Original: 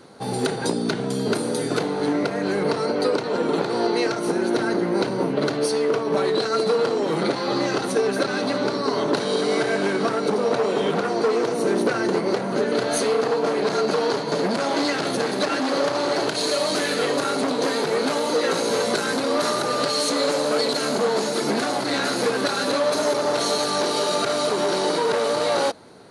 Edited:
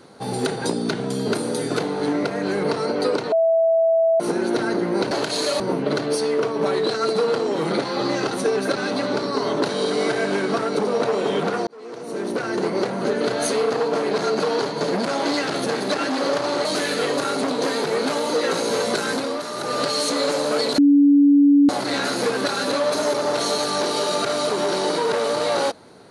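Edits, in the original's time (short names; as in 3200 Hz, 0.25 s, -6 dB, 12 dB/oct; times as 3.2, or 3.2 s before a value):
3.32–4.2 bleep 657 Hz -14 dBFS
11.18–12.27 fade in linear
16.16–16.65 move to 5.11
19.15–19.78 dip -8.5 dB, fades 0.29 s
20.78–21.69 bleep 285 Hz -10 dBFS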